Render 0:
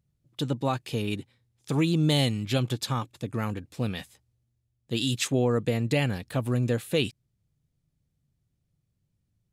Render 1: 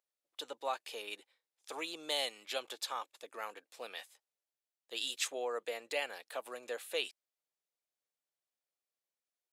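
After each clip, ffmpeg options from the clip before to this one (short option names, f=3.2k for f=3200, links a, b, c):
-af "highpass=f=520:w=0.5412,highpass=f=520:w=1.3066,volume=-6.5dB"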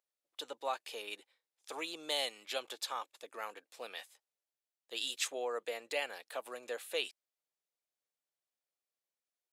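-af anull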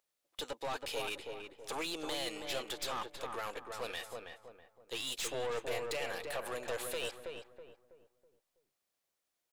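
-filter_complex "[0:a]alimiter=level_in=7.5dB:limit=-24dB:level=0:latency=1:release=15,volume=-7.5dB,aeval=exprs='(tanh(126*val(0)+0.4)-tanh(0.4))/126':c=same,asplit=2[a][b];[b]adelay=325,lowpass=f=1.3k:p=1,volume=-3dB,asplit=2[c][d];[d]adelay=325,lowpass=f=1.3k:p=1,volume=0.4,asplit=2[e][f];[f]adelay=325,lowpass=f=1.3k:p=1,volume=0.4,asplit=2[g][h];[h]adelay=325,lowpass=f=1.3k:p=1,volume=0.4,asplit=2[i][j];[j]adelay=325,lowpass=f=1.3k:p=1,volume=0.4[k];[a][c][e][g][i][k]amix=inputs=6:normalize=0,volume=8.5dB"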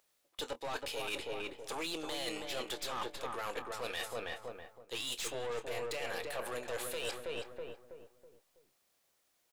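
-filter_complex "[0:a]areverse,acompressor=threshold=-46dB:ratio=6,areverse,asplit=2[a][b];[b]adelay=25,volume=-13dB[c];[a][c]amix=inputs=2:normalize=0,volume=9.5dB"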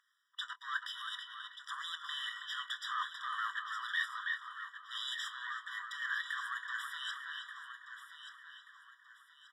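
-af "bandpass=f=1.9k:t=q:w=1.7:csg=0,aecho=1:1:1182|2364|3546|4728:0.299|0.102|0.0345|0.0117,afftfilt=real='re*eq(mod(floor(b*sr/1024/980),2),1)':imag='im*eq(mod(floor(b*sr/1024/980),2),1)':win_size=1024:overlap=0.75,volume=10dB"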